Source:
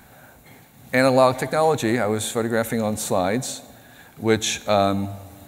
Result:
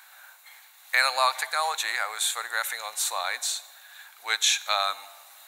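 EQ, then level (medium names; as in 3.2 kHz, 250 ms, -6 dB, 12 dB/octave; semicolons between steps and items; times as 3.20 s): high-pass 1 kHz 24 dB/octave; peaking EQ 4 kHz +4.5 dB 0.34 oct; +1.0 dB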